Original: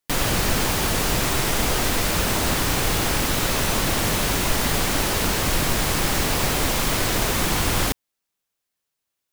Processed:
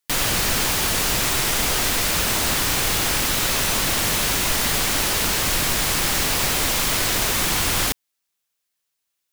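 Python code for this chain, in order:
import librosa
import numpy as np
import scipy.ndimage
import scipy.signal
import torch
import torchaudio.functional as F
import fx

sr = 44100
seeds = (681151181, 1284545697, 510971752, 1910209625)

y = fx.tilt_shelf(x, sr, db=-4.0, hz=1200.0)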